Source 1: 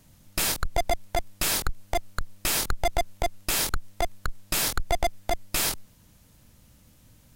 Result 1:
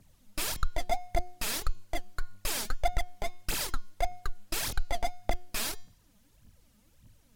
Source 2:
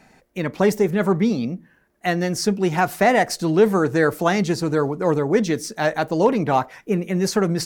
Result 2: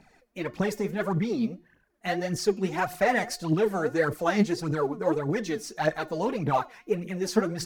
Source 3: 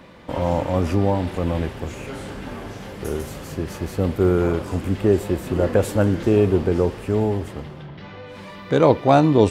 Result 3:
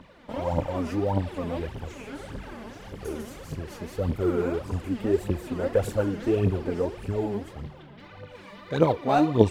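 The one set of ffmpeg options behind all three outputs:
-af "highshelf=frequency=8400:gain=-4,aphaser=in_gain=1:out_gain=1:delay=5:decay=0.69:speed=1.7:type=triangular,bandreject=frequency=359.5:width_type=h:width=4,bandreject=frequency=719:width_type=h:width=4,bandreject=frequency=1078.5:width_type=h:width=4,bandreject=frequency=1438:width_type=h:width=4,bandreject=frequency=1797.5:width_type=h:width=4,bandreject=frequency=2157:width_type=h:width=4,bandreject=frequency=2516.5:width_type=h:width=4,bandreject=frequency=2876:width_type=h:width=4,bandreject=frequency=3235.5:width_type=h:width=4,bandreject=frequency=3595:width_type=h:width=4,bandreject=frequency=3954.5:width_type=h:width=4,bandreject=frequency=4314:width_type=h:width=4,bandreject=frequency=4673.5:width_type=h:width=4,bandreject=frequency=5033:width_type=h:width=4,bandreject=frequency=5392.5:width_type=h:width=4,bandreject=frequency=5752:width_type=h:width=4,bandreject=frequency=6111.5:width_type=h:width=4,bandreject=frequency=6471:width_type=h:width=4,bandreject=frequency=6830.5:width_type=h:width=4,bandreject=frequency=7190:width_type=h:width=4,volume=-9dB"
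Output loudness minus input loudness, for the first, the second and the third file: −7.0, −7.5, −7.0 LU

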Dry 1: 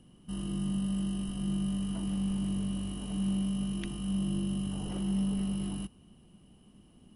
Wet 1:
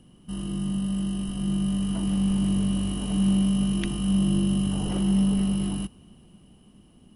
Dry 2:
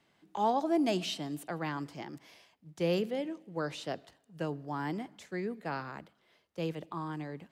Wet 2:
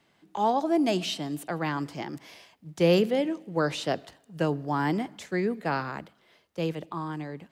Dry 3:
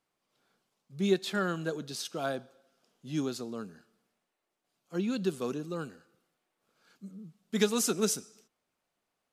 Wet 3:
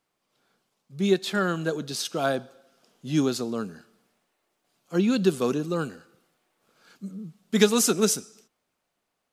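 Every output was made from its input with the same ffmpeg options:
-af "dynaudnorm=framelen=410:gausssize=9:maxgain=5dB,volume=4dB"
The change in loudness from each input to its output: +8.0, +7.0, +7.0 LU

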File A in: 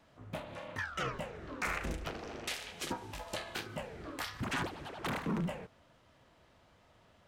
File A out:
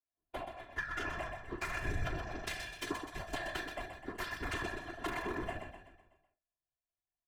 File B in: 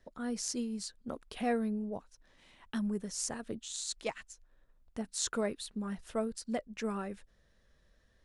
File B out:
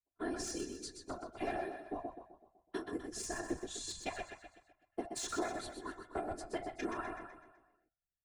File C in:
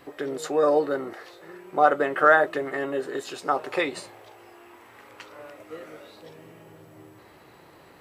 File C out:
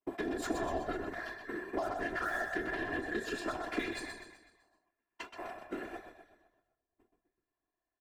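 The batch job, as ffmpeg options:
-filter_complex "[0:a]afftfilt=real='hypot(re,im)*cos(PI*b)':imag='0':win_size=512:overlap=0.75,asplit=2[link_01][link_02];[link_02]adelay=36,volume=-11.5dB[link_03];[link_01][link_03]amix=inputs=2:normalize=0,adynamicequalizer=threshold=0.00355:dfrequency=1700:dqfactor=2:tfrequency=1700:tqfactor=2:attack=5:release=100:ratio=0.375:range=2:mode=boostabove:tftype=bell,asplit=2[link_04][link_05];[link_05]acrusher=bits=3:mix=0:aa=0.5,volume=-9.5dB[link_06];[link_04][link_06]amix=inputs=2:normalize=0,agate=range=-47dB:threshold=-45dB:ratio=16:detection=peak,acompressor=threshold=-49dB:ratio=2,bandreject=frequency=231.8:width_type=h:width=4,bandreject=frequency=463.6:width_type=h:width=4,bandreject=frequency=695.4:width_type=h:width=4,bandreject=frequency=927.2:width_type=h:width=4,bandreject=frequency=1159:width_type=h:width=4,bandreject=frequency=1390.8:width_type=h:width=4,bandreject=frequency=1622.6:width_type=h:width=4,bandreject=frequency=1854.4:width_type=h:width=4,bandreject=frequency=2086.2:width_type=h:width=4,bandreject=frequency=2318:width_type=h:width=4,bandreject=frequency=2549.8:width_type=h:width=4,bandreject=frequency=2781.6:width_type=h:width=4,bandreject=frequency=3013.4:width_type=h:width=4,bandreject=frequency=3245.2:width_type=h:width=4,bandreject=frequency=3477:width_type=h:width=4,bandreject=frequency=3708.8:width_type=h:width=4,bandreject=frequency=3940.6:width_type=h:width=4,bandreject=frequency=4172.4:width_type=h:width=4,bandreject=frequency=4404.2:width_type=h:width=4,bandreject=frequency=4636:width_type=h:width=4,bandreject=frequency=4867.8:width_type=h:width=4,bandreject=frequency=5099.6:width_type=h:width=4,bandreject=frequency=5331.4:width_type=h:width=4,bandreject=frequency=5563.2:width_type=h:width=4,bandreject=frequency=5795:width_type=h:width=4,bandreject=frequency=6026.8:width_type=h:width=4,bandreject=frequency=6258.6:width_type=h:width=4,bandreject=frequency=6490.4:width_type=h:width=4,bandreject=frequency=6722.2:width_type=h:width=4,bandreject=frequency=6954:width_type=h:width=4,bandreject=frequency=7185.8:width_type=h:width=4,bandreject=frequency=7417.6:width_type=h:width=4,bandreject=frequency=7649.4:width_type=h:width=4,bandreject=frequency=7881.2:width_type=h:width=4,bandreject=frequency=8113:width_type=h:width=4,bandreject=frequency=8344.8:width_type=h:width=4,bandreject=frequency=8576.6:width_type=h:width=4,acrossover=split=270|3000[link_07][link_08][link_09];[link_08]acompressor=threshold=-45dB:ratio=10[link_10];[link_07][link_10][link_09]amix=inputs=3:normalize=0,highshelf=frequency=2900:gain=-9,asplit=2[link_11][link_12];[link_12]aecho=0:1:126|252|378|504|630|756:0.447|0.219|0.107|0.0526|0.0258|0.0126[link_13];[link_11][link_13]amix=inputs=2:normalize=0,afftfilt=real='hypot(re,im)*cos(2*PI*random(0))':imag='hypot(re,im)*sin(2*PI*random(1))':win_size=512:overlap=0.75,volume=17.5dB"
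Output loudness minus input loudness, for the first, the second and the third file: −1.0, −5.0, −14.0 LU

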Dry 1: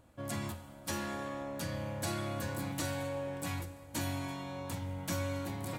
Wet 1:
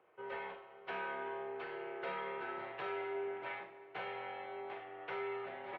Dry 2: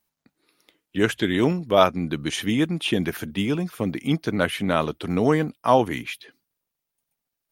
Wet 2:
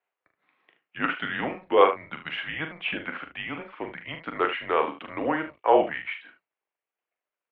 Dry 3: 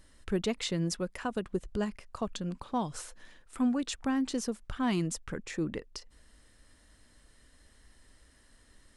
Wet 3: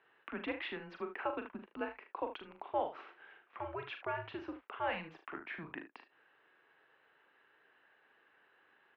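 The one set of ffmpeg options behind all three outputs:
-filter_complex "[0:a]asplit=2[link_01][link_02];[link_02]aecho=0:1:41|75:0.422|0.251[link_03];[link_01][link_03]amix=inputs=2:normalize=0,highpass=frequency=560:width_type=q:width=0.5412,highpass=frequency=560:width_type=q:width=1.307,lowpass=frequency=2900:width_type=q:width=0.5176,lowpass=frequency=2900:width_type=q:width=0.7071,lowpass=frequency=2900:width_type=q:width=1.932,afreqshift=-160"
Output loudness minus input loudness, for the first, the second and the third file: −4.5, −4.0, −8.0 LU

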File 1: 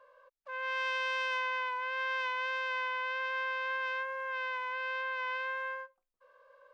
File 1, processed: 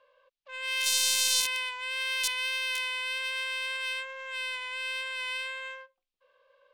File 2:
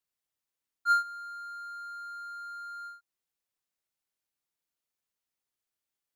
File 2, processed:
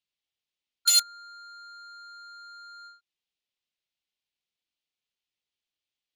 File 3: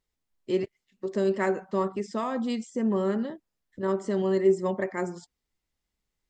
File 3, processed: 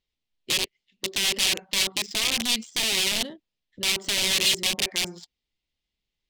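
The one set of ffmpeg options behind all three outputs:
-af "aeval=exprs='(mod(16.8*val(0)+1,2)-1)/16.8':channel_layout=same,highshelf=frequency=2100:width_type=q:width=1.5:gain=14,adynamicsmooth=sensitivity=4:basefreq=2800,volume=-2.5dB"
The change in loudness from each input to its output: +5.0, +12.5, +5.0 LU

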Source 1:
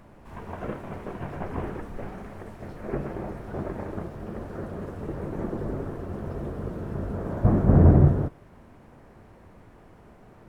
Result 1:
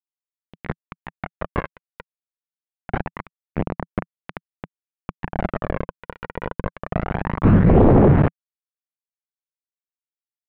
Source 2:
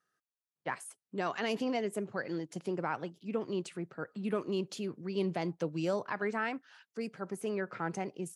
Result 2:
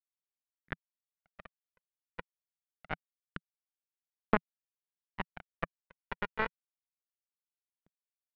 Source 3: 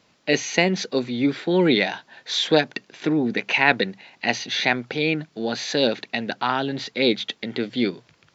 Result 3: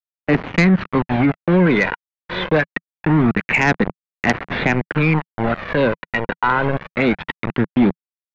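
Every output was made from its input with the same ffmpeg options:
-filter_complex "[0:a]aecho=1:1:812:0.0708,acrossover=split=380|770[link_01][link_02][link_03];[link_02]acompressor=threshold=-43dB:ratio=4[link_04];[link_01][link_04][link_03]amix=inputs=3:normalize=0,aeval=exprs='val(0)+0.00141*(sin(2*PI*50*n/s)+sin(2*PI*2*50*n/s)/2+sin(2*PI*3*50*n/s)/3+sin(2*PI*4*50*n/s)/4+sin(2*PI*5*50*n/s)/5)':channel_layout=same,aresample=16000,aeval=exprs='val(0)*gte(abs(val(0)),0.0562)':channel_layout=same,aresample=44100,lowpass=frequency=2100:width=0.5412,lowpass=frequency=2100:width=1.3066,equalizer=frequency=170:width_type=o:width=0.68:gain=5.5,aphaser=in_gain=1:out_gain=1:delay=2.1:decay=0.43:speed=0.24:type=sinusoidal,aeval=exprs='1.12*sin(PI/2*3.98*val(0)/1.12)':channel_layout=same,agate=range=-33dB:threshold=-32dB:ratio=3:detection=peak,alimiter=level_in=2.5dB:limit=-1dB:release=50:level=0:latency=1,volume=-7dB"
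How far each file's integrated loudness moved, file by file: +7.0, −3.0, +4.0 LU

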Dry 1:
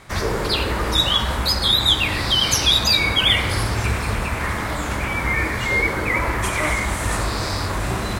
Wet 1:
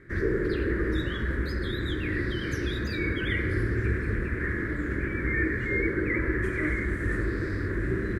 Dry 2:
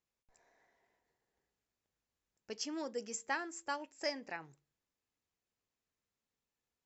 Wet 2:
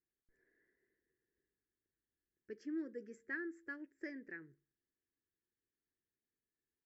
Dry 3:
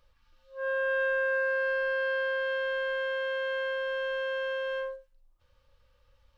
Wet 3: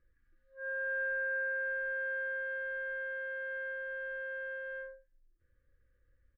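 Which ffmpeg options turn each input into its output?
-af "firequalizer=gain_entry='entry(220,0);entry(350,9);entry(770,-27);entry(1700,5);entry(2700,-19);entry(5900,-23)':delay=0.05:min_phase=1,volume=-5dB"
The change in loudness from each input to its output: −9.5, −5.5, −6.5 LU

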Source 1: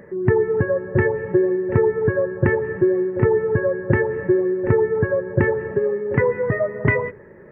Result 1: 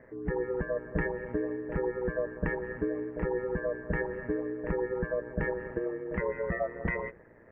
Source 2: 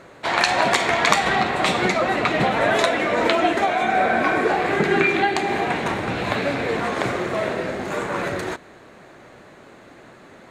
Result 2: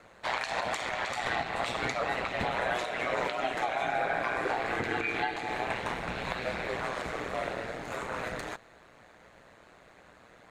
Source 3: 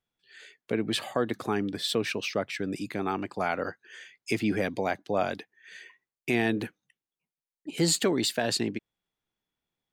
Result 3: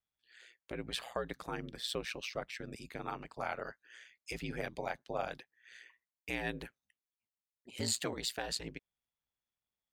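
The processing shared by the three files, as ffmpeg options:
-af "equalizer=frequency=290:width_type=o:width=0.8:gain=-11,alimiter=limit=-12dB:level=0:latency=1:release=159,aeval=exprs='val(0)*sin(2*PI*60*n/s)':channel_layout=same,volume=-5.5dB"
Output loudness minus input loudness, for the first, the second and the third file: −13.0, −12.0, −10.5 LU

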